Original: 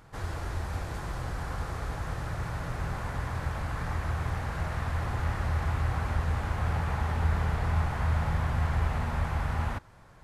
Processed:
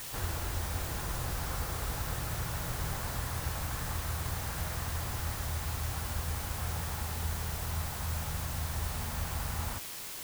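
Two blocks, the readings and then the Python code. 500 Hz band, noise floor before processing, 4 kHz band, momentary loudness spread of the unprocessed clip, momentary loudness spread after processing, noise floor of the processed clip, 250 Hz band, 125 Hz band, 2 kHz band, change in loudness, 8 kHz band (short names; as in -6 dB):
-4.5 dB, -53 dBFS, +5.5 dB, 7 LU, 1 LU, -42 dBFS, -5.5 dB, -6.0 dB, -4.0 dB, -3.5 dB, +12.0 dB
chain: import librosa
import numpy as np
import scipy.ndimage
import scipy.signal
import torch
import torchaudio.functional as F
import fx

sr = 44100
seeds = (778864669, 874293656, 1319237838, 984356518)

y = fx.rider(x, sr, range_db=10, speed_s=0.5)
y = fx.quant_dither(y, sr, seeds[0], bits=6, dither='triangular')
y = y * 10.0 ** (-6.0 / 20.0)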